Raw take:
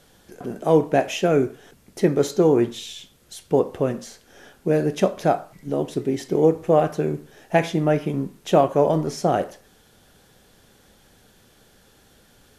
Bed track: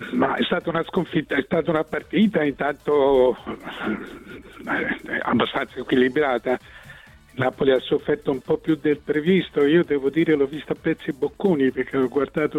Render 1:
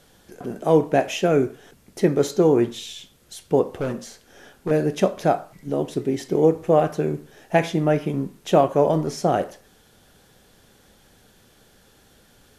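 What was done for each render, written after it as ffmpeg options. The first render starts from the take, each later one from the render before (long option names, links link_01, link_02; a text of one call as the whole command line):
ffmpeg -i in.wav -filter_complex "[0:a]asettb=1/sr,asplit=3[link_01][link_02][link_03];[link_01]atrim=end=3.634[link_04];[link_02]atrim=start=3.63:end=4.71,asetpts=PTS-STARTPTS,afade=type=in:duration=0.004:curve=qsin,afade=type=out:start_time=1.076:duration=0.004:curve=qsin,volume=20.5dB,asoftclip=hard,volume=-20.5dB[link_05];[link_03]atrim=start=4.706[link_06];[link_04][link_05]acrossfade=duration=0.004:curve1=hsin:curve2=qsin[link_07];[link_07][link_06]acrossfade=duration=0.004:curve1=qsin:curve2=hsin" out.wav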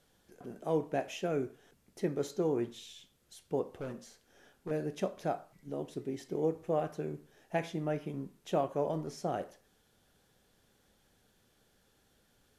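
ffmpeg -i in.wav -af "volume=-14.5dB" out.wav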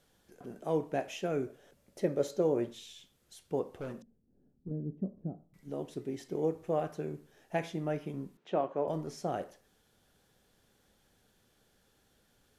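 ffmpeg -i in.wav -filter_complex "[0:a]asettb=1/sr,asplit=3[link_01][link_02][link_03];[link_01]atrim=end=1.474[link_04];[link_02]atrim=start=1.47:end=2.74,asetpts=PTS-STARTPTS,afade=type=in:duration=0.004:curve=qsin,afade=type=out:start_time=1.266:duration=0.004:curve=qsin,equalizer=frequency=570:width=5.5:gain=13.5[link_05];[link_03]atrim=start=2.736[link_06];[link_04][link_05]acrossfade=duration=0.004:curve1=hsin:curve2=qsin[link_07];[link_07][link_06]acrossfade=duration=0.004:curve1=qsin:curve2=hsin,asettb=1/sr,asplit=3[link_08][link_09][link_10];[link_08]atrim=end=4.024[link_11];[link_09]atrim=start=4.02:end=5.54,asetpts=PTS-STARTPTS,afade=type=in:duration=0.004:curve=qsin,afade=type=out:start_time=1.516:duration=0.004:curve=qsin,lowpass=frequency=220:width_type=q:width=1.6[link_12];[link_10]atrim=start=5.536[link_13];[link_11][link_12]acrossfade=duration=0.004:curve1=hsin:curve2=qsin[link_14];[link_14][link_13]acrossfade=duration=0.004:curve1=qsin:curve2=hsin,asettb=1/sr,asplit=3[link_15][link_16][link_17];[link_15]atrim=end=8.374[link_18];[link_16]atrim=start=8.37:end=8.88,asetpts=PTS-STARTPTS,afade=type=in:duration=0.004:curve=qsin,afade=type=out:start_time=0.506:duration=0.004:curve=qsin,highpass=200,lowpass=2800[link_19];[link_17]atrim=start=8.876[link_20];[link_18][link_19]acrossfade=duration=0.004:curve1=hsin:curve2=qsin[link_21];[link_21][link_20]acrossfade=duration=0.004:curve1=qsin:curve2=hsin" out.wav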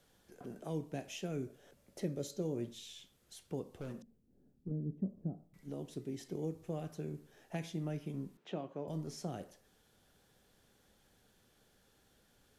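ffmpeg -i in.wav -filter_complex "[0:a]acrossover=split=270|3000[link_01][link_02][link_03];[link_02]acompressor=threshold=-48dB:ratio=3[link_04];[link_01][link_04][link_03]amix=inputs=3:normalize=0" out.wav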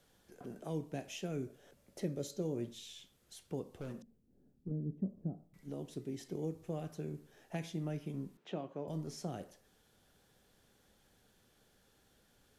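ffmpeg -i in.wav -af anull out.wav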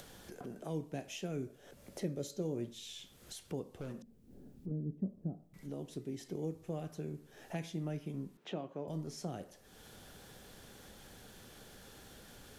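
ffmpeg -i in.wav -af "acompressor=mode=upward:threshold=-41dB:ratio=2.5" out.wav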